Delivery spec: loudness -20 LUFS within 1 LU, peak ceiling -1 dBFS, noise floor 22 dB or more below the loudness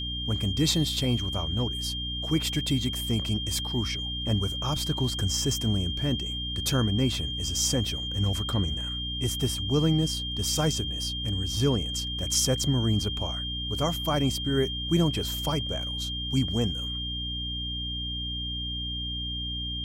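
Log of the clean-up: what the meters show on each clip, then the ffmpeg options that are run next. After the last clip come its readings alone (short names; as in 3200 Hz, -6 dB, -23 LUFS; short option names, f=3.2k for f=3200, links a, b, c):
hum 60 Hz; harmonics up to 300 Hz; hum level -33 dBFS; steady tone 3200 Hz; tone level -32 dBFS; loudness -27.5 LUFS; peak -12.0 dBFS; loudness target -20.0 LUFS
-> -af "bandreject=f=60:t=h:w=4,bandreject=f=120:t=h:w=4,bandreject=f=180:t=h:w=4,bandreject=f=240:t=h:w=4,bandreject=f=300:t=h:w=4"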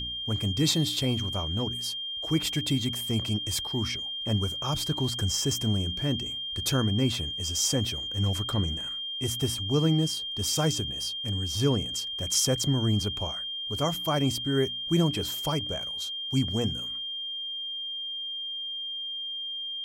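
hum none; steady tone 3200 Hz; tone level -32 dBFS
-> -af "bandreject=f=3.2k:w=30"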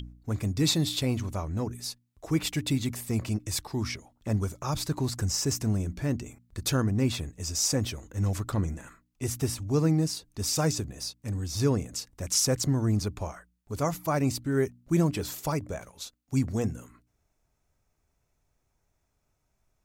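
steady tone none; loudness -29.5 LUFS; peak -13.5 dBFS; loudness target -20.0 LUFS
-> -af "volume=9.5dB"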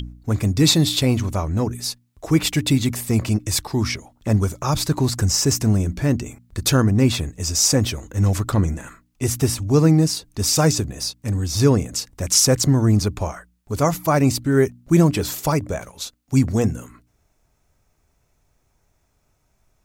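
loudness -20.0 LUFS; peak -4.0 dBFS; noise floor -66 dBFS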